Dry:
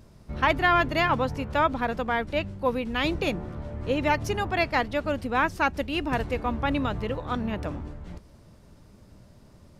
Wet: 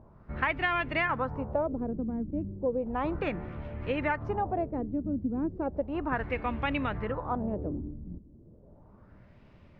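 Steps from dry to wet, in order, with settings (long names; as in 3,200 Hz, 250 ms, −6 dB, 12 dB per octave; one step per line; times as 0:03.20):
auto-filter low-pass sine 0.34 Hz 260–2,600 Hz
downward compressor 4 to 1, threshold −22 dBFS, peak gain reduction 7.5 dB
level −3.5 dB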